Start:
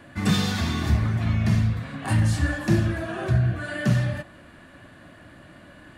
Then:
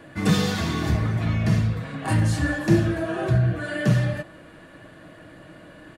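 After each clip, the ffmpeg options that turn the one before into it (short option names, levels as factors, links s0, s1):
-af "equalizer=f=460:t=o:w=0.89:g=6.5,aecho=1:1:6.3:0.37"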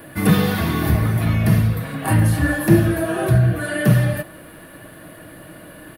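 -filter_complex "[0:a]acrossover=split=3400[s0][s1];[s1]acompressor=threshold=0.00447:ratio=6[s2];[s0][s2]amix=inputs=2:normalize=0,aexciter=amount=11.2:drive=6.5:freq=10000,volume=1.78"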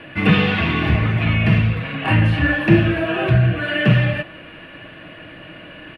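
-af "lowpass=f=2700:t=q:w=4.9"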